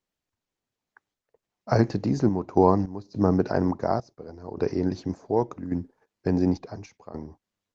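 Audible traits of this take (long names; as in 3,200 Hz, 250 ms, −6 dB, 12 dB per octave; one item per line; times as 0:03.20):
sample-and-hold tremolo, depth 90%
Opus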